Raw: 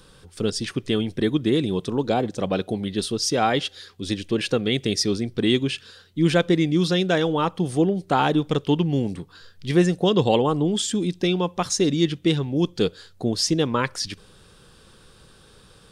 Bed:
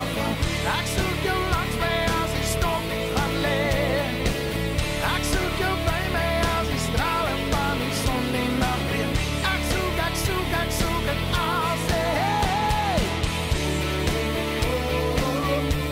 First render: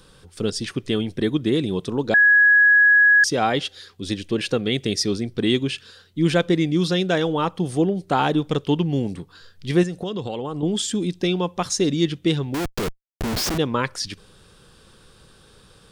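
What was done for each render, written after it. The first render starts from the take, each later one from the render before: 2.14–3.24 s: bleep 1.67 kHz -10.5 dBFS; 9.83–10.63 s: compression 5:1, threshold -25 dBFS; 12.54–13.58 s: Schmitt trigger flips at -30.5 dBFS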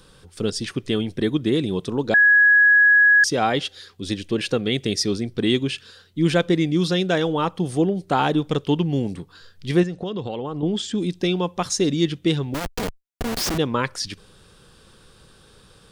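9.80–10.98 s: distance through air 97 m; 12.54–13.41 s: comb filter that takes the minimum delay 4.2 ms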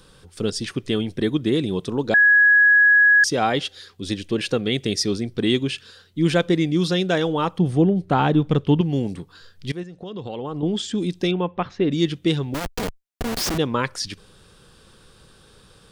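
7.58–8.81 s: tone controls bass +7 dB, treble -10 dB; 9.72–10.52 s: fade in, from -19 dB; 11.31–11.92 s: low-pass 2.8 kHz 24 dB/octave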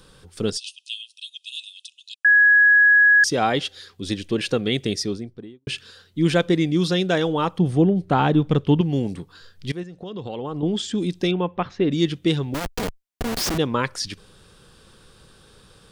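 0.57–2.25 s: brick-wall FIR band-pass 2.5–11 kHz; 4.76–5.67 s: studio fade out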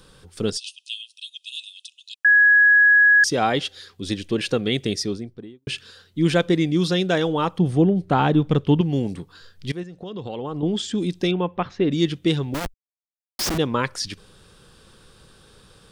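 12.74–13.39 s: mute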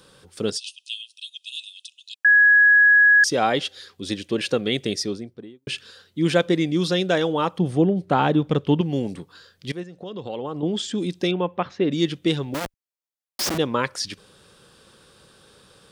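high-pass 170 Hz 6 dB/octave; peaking EQ 560 Hz +3.5 dB 0.24 oct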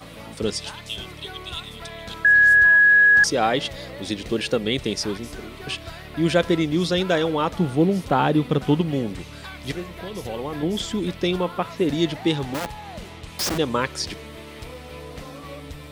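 add bed -14 dB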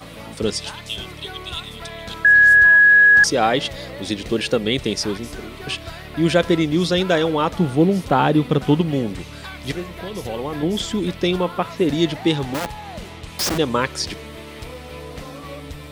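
trim +3 dB; peak limiter -3 dBFS, peak gain reduction 1 dB

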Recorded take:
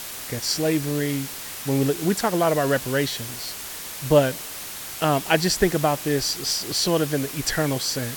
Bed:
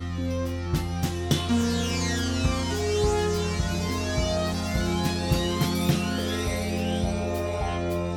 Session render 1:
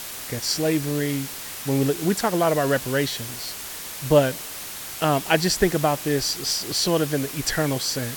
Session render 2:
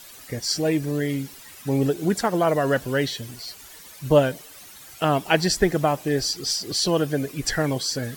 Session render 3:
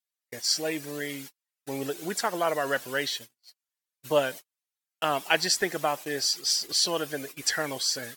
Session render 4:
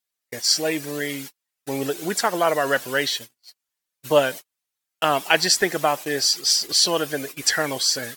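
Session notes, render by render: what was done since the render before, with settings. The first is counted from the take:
no audible change
noise reduction 13 dB, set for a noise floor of -35 dBFS
gate -32 dBFS, range -47 dB; high-pass 1.1 kHz 6 dB/octave
trim +6.5 dB; peak limiter -2 dBFS, peak gain reduction 1.5 dB

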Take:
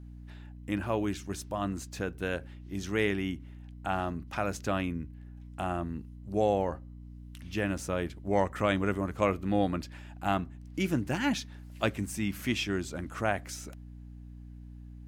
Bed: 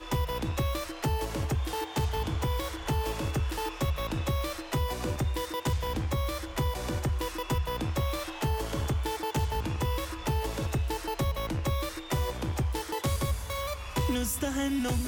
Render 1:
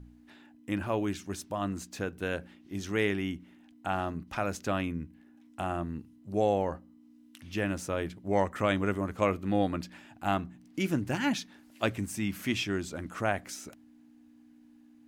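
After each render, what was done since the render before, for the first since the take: de-hum 60 Hz, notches 3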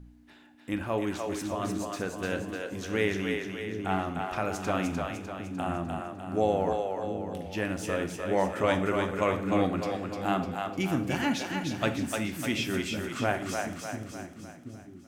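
two-band feedback delay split 350 Hz, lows 727 ms, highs 301 ms, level -4 dB; plate-style reverb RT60 0.71 s, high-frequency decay 0.95×, DRR 8.5 dB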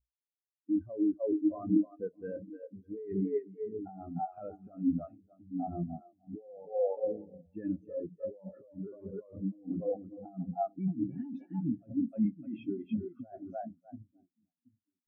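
compressor with a negative ratio -31 dBFS, ratio -1; spectral contrast expander 4:1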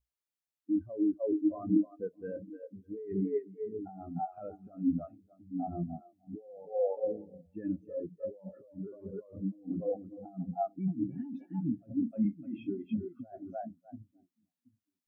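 11.99–12.75 s: doubling 35 ms -11.5 dB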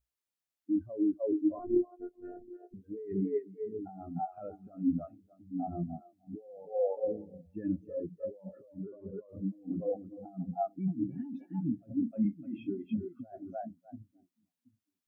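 1.59–2.74 s: robot voice 357 Hz; 7.08–8.24 s: bass shelf 140 Hz +7.5 dB; 8.84–9.29 s: distance through air 280 m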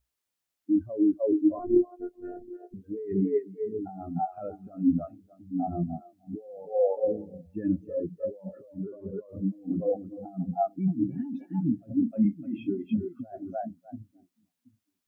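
trim +6 dB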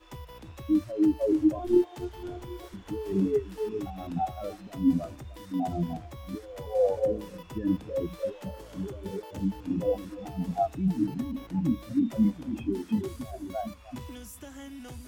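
add bed -14 dB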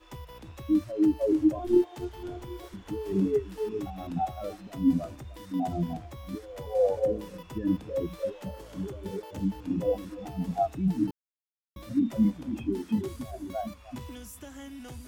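11.11–11.76 s: mute

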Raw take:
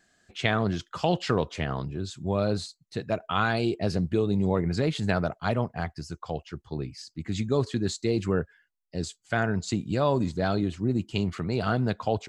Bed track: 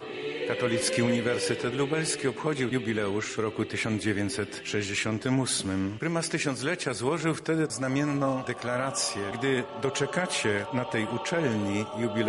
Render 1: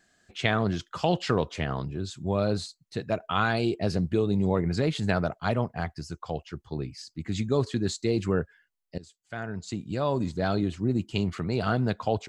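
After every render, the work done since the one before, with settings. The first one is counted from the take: 8.98–10.58 s: fade in, from -19.5 dB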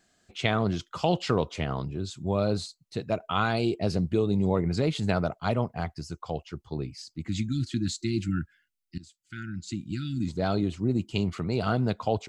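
7.28–10.28 s: spectral selection erased 360–1300 Hz; peaking EQ 1.7 kHz -7 dB 0.29 oct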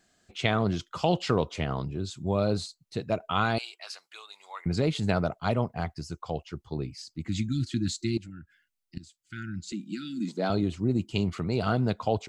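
3.58–4.66 s: high-pass 1.1 kHz 24 dB/octave; 8.17–8.97 s: compression 3:1, threshold -45 dBFS; 9.72–10.50 s: steep high-pass 180 Hz 48 dB/octave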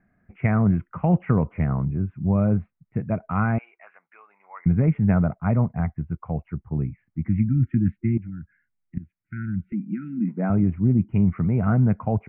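steep low-pass 2.3 kHz 72 dB/octave; resonant low shelf 270 Hz +8 dB, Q 1.5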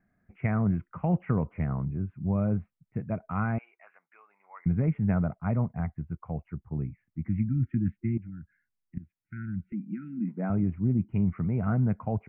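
trim -6.5 dB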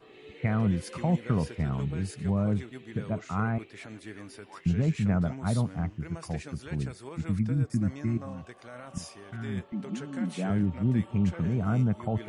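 add bed track -15.5 dB

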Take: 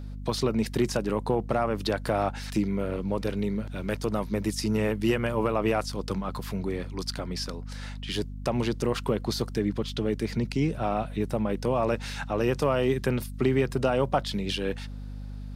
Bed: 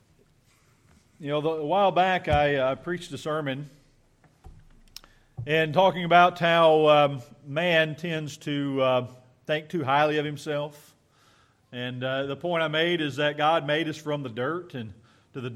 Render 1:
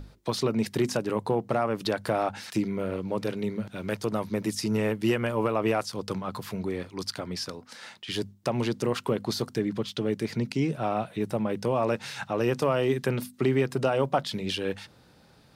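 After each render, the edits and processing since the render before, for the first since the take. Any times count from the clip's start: hum notches 50/100/150/200/250 Hz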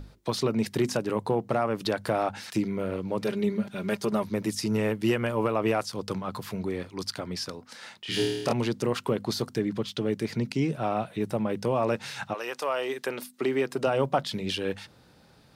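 3.23–4.23 s: comb 5 ms, depth 69%; 8.01–8.53 s: flutter echo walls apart 4.5 m, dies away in 1.1 s; 12.33–13.86 s: high-pass 880 Hz -> 210 Hz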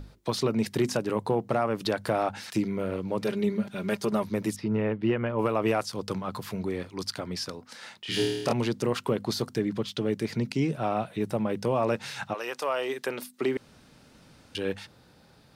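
4.56–5.39 s: distance through air 380 m; 13.57–14.55 s: room tone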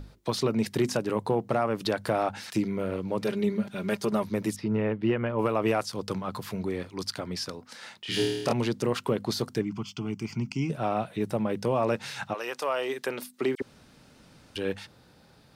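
9.61–10.70 s: static phaser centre 2.6 kHz, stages 8; 13.55–14.56 s: phase dispersion lows, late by 51 ms, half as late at 2.6 kHz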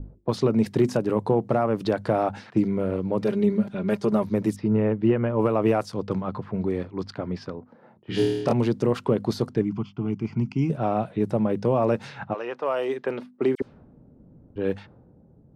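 level-controlled noise filter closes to 370 Hz, open at -25 dBFS; tilt shelf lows +6 dB, about 1.3 kHz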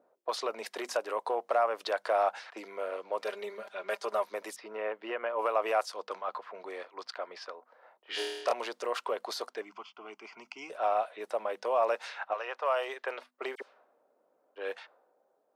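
high-pass 620 Hz 24 dB/octave; band-stop 850 Hz, Q 12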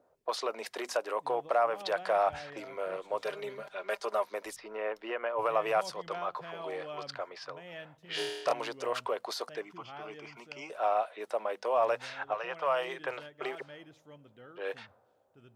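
add bed -24 dB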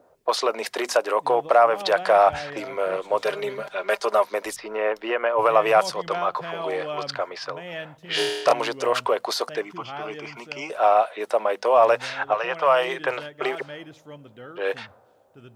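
trim +11 dB

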